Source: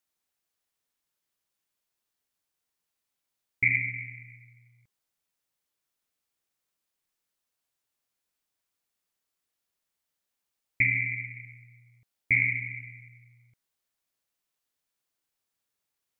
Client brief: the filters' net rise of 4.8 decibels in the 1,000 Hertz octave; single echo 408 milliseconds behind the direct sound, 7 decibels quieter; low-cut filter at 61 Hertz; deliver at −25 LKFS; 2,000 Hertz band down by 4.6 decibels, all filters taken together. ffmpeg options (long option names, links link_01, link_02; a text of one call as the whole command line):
ffmpeg -i in.wav -af "highpass=61,equalizer=frequency=1000:width_type=o:gain=8.5,equalizer=frequency=2000:width_type=o:gain=-6.5,aecho=1:1:408:0.447,volume=6.5dB" out.wav